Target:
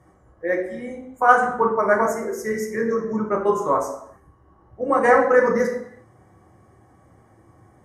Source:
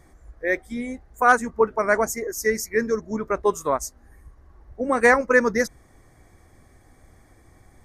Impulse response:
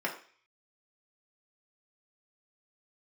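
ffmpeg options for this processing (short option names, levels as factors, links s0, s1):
-filter_complex "[1:a]atrim=start_sample=2205,afade=t=out:st=0.28:d=0.01,atrim=end_sample=12789,asetrate=24696,aresample=44100[s0];[0:a][s0]afir=irnorm=-1:irlink=0,volume=0.376"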